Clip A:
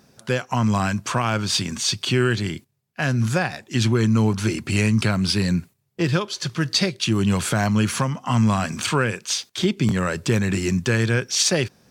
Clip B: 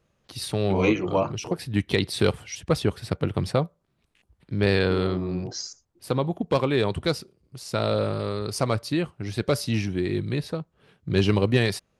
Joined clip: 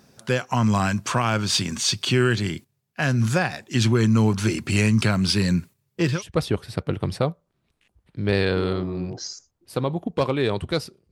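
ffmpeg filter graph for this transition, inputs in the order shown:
-filter_complex "[0:a]asettb=1/sr,asplit=3[a][b][c];[a]atrim=end=5.364[d];[b]atrim=start=5.36:end=6.23,asetpts=PTS-STARTPTS,afade=t=in:d=0.004:c=qsin,afade=t=out:st=0.866:d=0.004:c=qsin,asuperstop=centerf=730:order=4:qfactor=7.1[e];[c]atrim=start=6.226[f];[d][e]acrossfade=d=0.004:c1=hsin:c2=qsin[g];[g][f]acrossfade=d=0.004:c1=qsin:c2=hsin,apad=whole_dur=11.11,atrim=end=11.11,atrim=end=6.23,asetpts=PTS-STARTPTS[h];[1:a]atrim=start=2.43:end=7.45,asetpts=PTS-STARTPTS[i];[h][i]acrossfade=d=0.14:c1=tri:c2=tri"

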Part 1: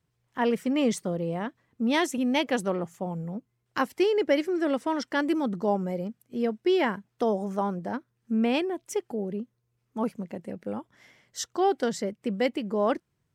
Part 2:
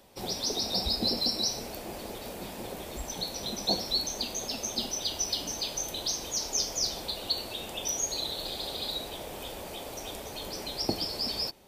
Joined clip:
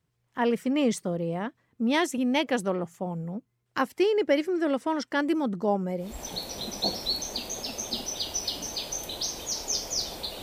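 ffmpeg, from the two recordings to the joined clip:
-filter_complex "[0:a]apad=whole_dur=10.42,atrim=end=10.42,atrim=end=6.22,asetpts=PTS-STARTPTS[a];[1:a]atrim=start=2.81:end=7.27,asetpts=PTS-STARTPTS[b];[a][b]acrossfade=d=0.26:c1=tri:c2=tri"

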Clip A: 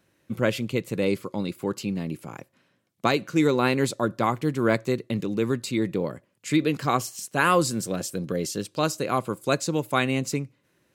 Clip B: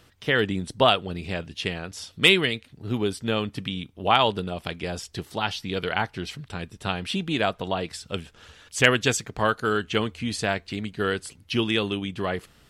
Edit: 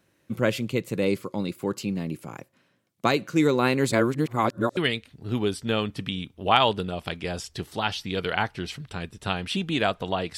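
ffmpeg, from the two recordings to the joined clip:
-filter_complex "[0:a]apad=whole_dur=10.37,atrim=end=10.37,asplit=2[a][b];[a]atrim=end=3.922[c];[b]atrim=start=3.918:end=4.772,asetpts=PTS-STARTPTS,areverse[d];[1:a]atrim=start=2.358:end=7.96[e];[c][d]acrossfade=d=0.004:c1=hsin:c2=hsin[f];[f][e]acrossfade=d=0.004:c1=hsin:c2=hsin"

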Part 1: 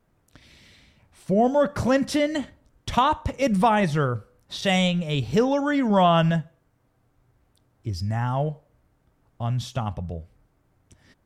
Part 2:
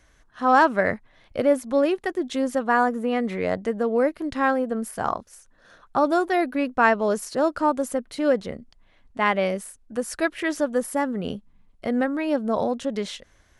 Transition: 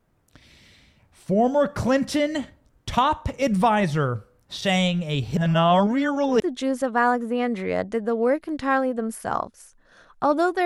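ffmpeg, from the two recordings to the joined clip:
-filter_complex "[0:a]apad=whole_dur=10.65,atrim=end=10.65,asplit=2[a][b];[a]atrim=end=5.372[c];[b]atrim=start=5.368:end=6.402,asetpts=PTS-STARTPTS,areverse[d];[1:a]atrim=start=2.128:end=6.38[e];[c][d]acrossfade=d=0.004:c1=hsin:c2=hsin[f];[f][e]acrossfade=d=0.004:c1=hsin:c2=hsin"

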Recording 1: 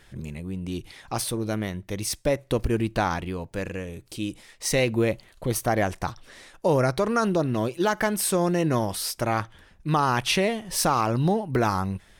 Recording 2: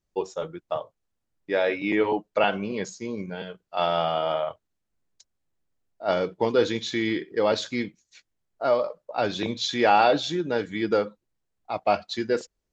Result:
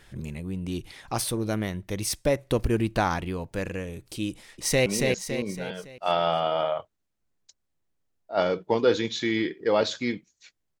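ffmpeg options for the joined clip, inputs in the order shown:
-filter_complex "[0:a]apad=whole_dur=10.8,atrim=end=10.8,atrim=end=4.862[a];[1:a]atrim=start=2.568:end=8.51[b];[a][b]acrossfade=d=0.004:c1=hsin:c2=hsin,asplit=2[c][d];[d]afade=t=in:st=4.3:d=0.01,afade=t=out:st=4.86:d=0.01,aecho=0:1:280|560|840|1120|1400|1680:0.707946|0.318576|0.143359|0.0645116|0.0290302|0.0130636[e];[c][e]amix=inputs=2:normalize=0"

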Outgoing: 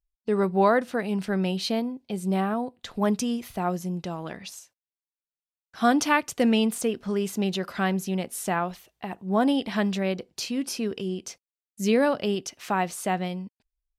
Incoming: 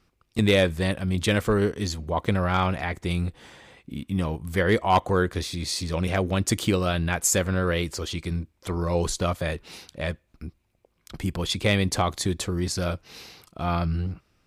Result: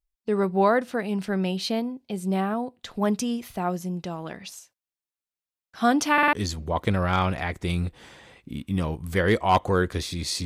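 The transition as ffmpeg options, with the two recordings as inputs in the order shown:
-filter_complex "[0:a]apad=whole_dur=10.45,atrim=end=10.45,asplit=4[a][b][c][d];[a]atrim=end=6.182[e];[b]atrim=start=6.128:end=6.182[f];[c]atrim=start=6.128:end=6.182[g];[d]atrim=start=6.128:end=6.182[h];[1:a]atrim=start=1.738:end=5.86[i];[e][f]acrossfade=d=0.004:c1=hsin:c2=hsin[j];[j][g]acrossfade=d=0.004:c1=hsin:c2=hsin[k];[k][h]acrossfade=d=0.004:c1=hsin:c2=hsin[l];[l][i]acrossfade=d=0.004:c1=hsin:c2=hsin"

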